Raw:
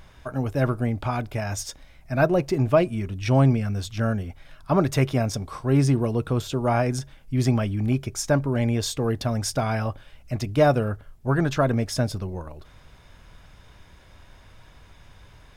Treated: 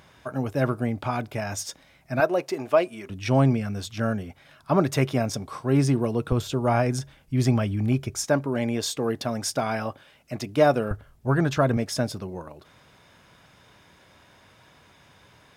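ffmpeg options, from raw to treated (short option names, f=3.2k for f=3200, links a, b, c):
-af "asetnsamples=n=441:p=0,asendcmd='2.2 highpass f 410;3.09 highpass f 130;6.32 highpass f 58;8.24 highpass f 190;10.91 highpass f 45;11.77 highpass f 150',highpass=130"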